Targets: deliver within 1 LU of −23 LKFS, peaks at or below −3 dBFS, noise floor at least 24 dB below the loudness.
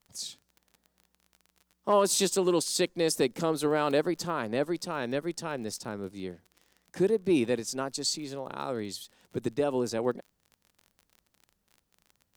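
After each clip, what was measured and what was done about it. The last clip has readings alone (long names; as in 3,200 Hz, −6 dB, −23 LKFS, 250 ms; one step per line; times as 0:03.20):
crackle rate 30 per second; integrated loudness −29.5 LKFS; sample peak −13.5 dBFS; target loudness −23.0 LKFS
→ click removal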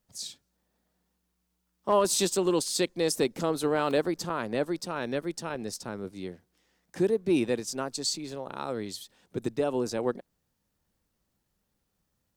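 crackle rate 0.49 per second; integrated loudness −29.5 LKFS; sample peak −13.0 dBFS; target loudness −23.0 LKFS
→ level +6.5 dB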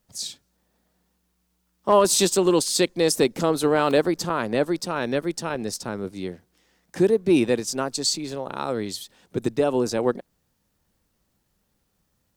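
integrated loudness −23.0 LKFS; sample peak −6.5 dBFS; background noise floor −72 dBFS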